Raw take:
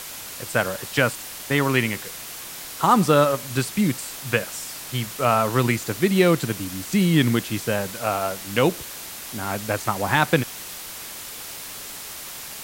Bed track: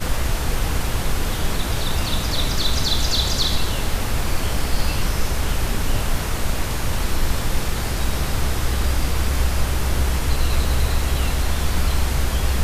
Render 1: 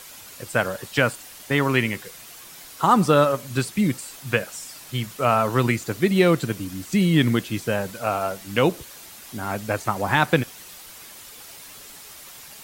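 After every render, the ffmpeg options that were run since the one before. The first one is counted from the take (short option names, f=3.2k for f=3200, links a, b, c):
-af "afftdn=nr=8:nf=-36"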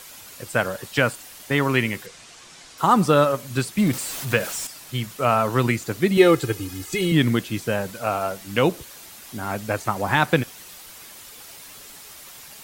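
-filter_complex "[0:a]asettb=1/sr,asplit=3[a][b][c];[a]atrim=end=2.064[d];[b]atrim=start=2.06:end=2.78,asetpts=PTS-STARTPTS,afade=t=in:d=0.004:c=qsin,afade=t=out:st=0.716:d=0.004:c=qsin,lowpass=f=8.1k:w=0.5412,lowpass=f=8.1k:w=1.3066[e];[c]atrim=start=2.776[f];[d][e]acrossfade=d=0.004:c1=hsin:c2=qsin[g];[g][f]acrossfade=d=0.004:c1=qsin:c2=hsin,asettb=1/sr,asplit=3[h][i][j];[h]atrim=end=3.784[k];[i]atrim=start=3.78:end=4.67,asetpts=PTS-STARTPTS,afade=t=in:d=0.004:c=qsin,afade=t=out:st=0.886:d=0.004:c=qsin,aeval=exprs='val(0)+0.5*0.0376*sgn(val(0))':c=same[l];[j]atrim=start=4.666[m];[k][l]acrossfade=d=0.004:c1=hsin:c2=qsin[n];[n][m]acrossfade=d=0.004:c1=qsin:c2=hsin,asettb=1/sr,asplit=3[o][p][q];[o]atrim=end=6.174[r];[p]atrim=start=6.17:end=7.12,asetpts=PTS-STARTPTS,afade=t=in:d=0.004:c=qsin,afade=t=out:st=0.946:d=0.004:c=qsin,aecho=1:1:2.4:0.86,atrim=end_sample=41895[s];[q]atrim=start=7.116[t];[r][s]acrossfade=d=0.004:c1=hsin:c2=qsin[u];[u][t]acrossfade=d=0.004:c1=qsin:c2=hsin"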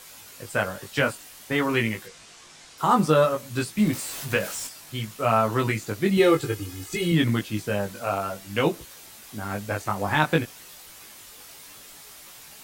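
-af "flanger=delay=18:depth=2.4:speed=0.56"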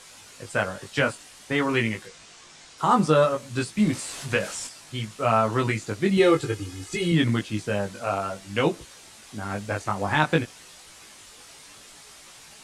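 -af "lowpass=f=9.7k:w=0.5412,lowpass=f=9.7k:w=1.3066"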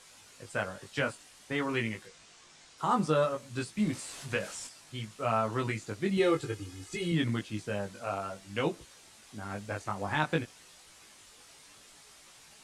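-af "volume=-8dB"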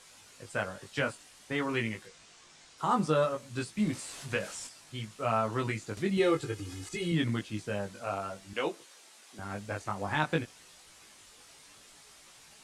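-filter_complex "[0:a]asettb=1/sr,asplit=3[a][b][c];[a]atrim=end=5.974[d];[b]atrim=start=5.97:end=6.89,asetpts=PTS-STARTPTS,afade=t=in:d=0.004:c=qsin,afade=t=out:st=0.916:d=0.004:c=qsin,acompressor=mode=upward:threshold=-34dB:ratio=2.5:attack=3.2:release=140:knee=2.83:detection=peak[e];[c]atrim=start=6.886[f];[d][e]acrossfade=d=0.004:c1=hsin:c2=qsin[g];[g][f]acrossfade=d=0.004:c1=qsin:c2=hsin,asettb=1/sr,asplit=3[h][i][j];[h]atrim=end=8.534[k];[i]atrim=start=8.53:end=9.39,asetpts=PTS-STARTPTS,afade=t=in:d=0.004:c=qsin,afade=t=out:st=0.856:d=0.004:c=qsin,highpass=340[l];[j]atrim=start=9.386[m];[k][l]acrossfade=d=0.004:c1=hsin:c2=qsin[n];[n][m]acrossfade=d=0.004:c1=qsin:c2=hsin"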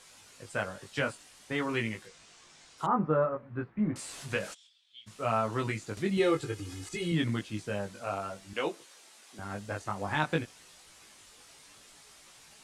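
-filter_complex "[0:a]asettb=1/sr,asplit=3[a][b][c];[a]atrim=end=2.864[d];[b]atrim=start=2.86:end=3.96,asetpts=PTS-STARTPTS,afade=t=in:d=0.004:c=qsin,afade=t=out:st=1.096:d=0.004:c=qsin,lowpass=f=1.7k:w=0.5412,lowpass=f=1.7k:w=1.3066[e];[c]atrim=start=3.956[f];[d][e]acrossfade=d=0.004:c1=hsin:c2=qsin[g];[g][f]acrossfade=d=0.004:c1=qsin:c2=hsin,asplit=3[h][i][j];[h]afade=t=out:st=4.53:d=0.02[k];[i]bandpass=f=3.4k:t=q:w=10,afade=t=in:st=4.53:d=0.02,afade=t=out:st=5.06:d=0.02[l];[j]afade=t=in:st=5.06:d=0.02[m];[k][l][m]amix=inputs=3:normalize=0,asettb=1/sr,asplit=3[n][o][p];[n]atrim=end=9.474[q];[o]atrim=start=9.47:end=9.9,asetpts=PTS-STARTPTS,afade=t=in:d=0.004:c=qsin,afade=t=out:st=0.426:d=0.004:c=qsin,bandreject=f=2.3k:w=12[r];[p]atrim=start=9.896[s];[q][r]acrossfade=d=0.004:c1=hsin:c2=qsin[t];[t][s]acrossfade=d=0.004:c1=qsin:c2=hsin"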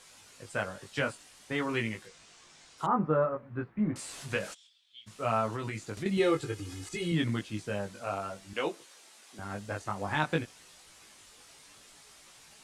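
-filter_complex "[0:a]asettb=1/sr,asplit=3[a][b][c];[a]atrim=end=5.514[d];[b]atrim=start=5.51:end=6.06,asetpts=PTS-STARTPTS,afade=t=in:d=0.004:c=qsin,afade=t=out:st=0.546:d=0.004:c=qsin,acompressor=threshold=-31dB:ratio=6:attack=3.2:release=140:knee=1:detection=peak[e];[c]atrim=start=6.056[f];[d][e]acrossfade=d=0.004:c1=hsin:c2=qsin[g];[g][f]acrossfade=d=0.004:c1=qsin:c2=hsin"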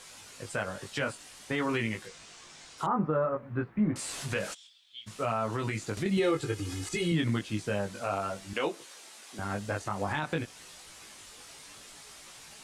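-filter_complex "[0:a]asplit=2[a][b];[b]acompressor=threshold=-36dB:ratio=6,volume=-0.5dB[c];[a][c]amix=inputs=2:normalize=0,alimiter=limit=-19dB:level=0:latency=1:release=58"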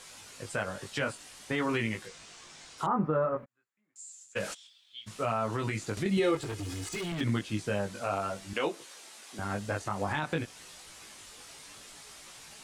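-filter_complex "[0:a]asplit=3[a][b][c];[a]afade=t=out:st=3.44:d=0.02[d];[b]bandpass=f=7.2k:t=q:w=13,afade=t=in:st=3.44:d=0.02,afade=t=out:st=4.35:d=0.02[e];[c]afade=t=in:st=4.35:d=0.02[f];[d][e][f]amix=inputs=3:normalize=0,asettb=1/sr,asplit=3[g][h][i];[g]atrim=end=6.354[j];[h]atrim=start=6.35:end=7.21,asetpts=PTS-STARTPTS,afade=t=in:d=0.004:c=qsin,afade=t=out:st=0.856:d=0.004:c=qsin,volume=33dB,asoftclip=hard,volume=-33dB[k];[i]atrim=start=7.206[l];[j][k]acrossfade=d=0.004:c1=hsin:c2=qsin[m];[m][l]acrossfade=d=0.004:c1=qsin:c2=hsin"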